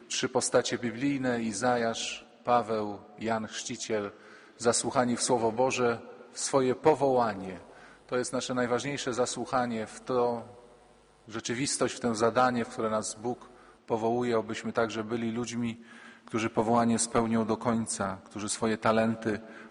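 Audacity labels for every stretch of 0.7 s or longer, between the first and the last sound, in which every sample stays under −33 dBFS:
10.410000	11.340000	silence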